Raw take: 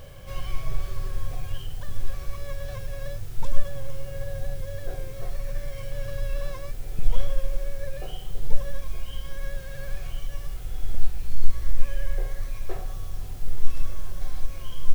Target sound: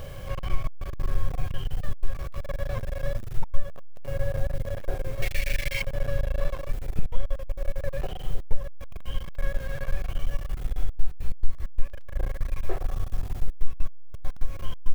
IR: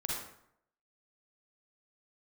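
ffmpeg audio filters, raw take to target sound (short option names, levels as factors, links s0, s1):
-filter_complex "[0:a]acrossover=split=2700[s0][s1];[s1]acompressor=threshold=0.00158:ratio=4:attack=1:release=60[s2];[s0][s2]amix=inputs=2:normalize=0,asettb=1/sr,asplit=3[s3][s4][s5];[s3]atrim=end=5.224[s6];[s4]atrim=start=5.22:end=5.82,asetpts=PTS-STARTPTS,afade=t=in:d=0.004:c=qsin,afade=t=out:st=0.596:d=0.004:c=qsin,highshelf=f=1600:t=q:w=3:g=13[s7];[s5]atrim=start=5.816[s8];[s6][s7]acrossfade=d=0.004:c1=hsin:c2=qsin[s9];[s9][s8]acrossfade=d=0.004:c1=qsin:c2=hsin,acompressor=threshold=0.0891:ratio=2.5,aeval=exprs='clip(val(0),-1,0.0168)':c=same,volume=2"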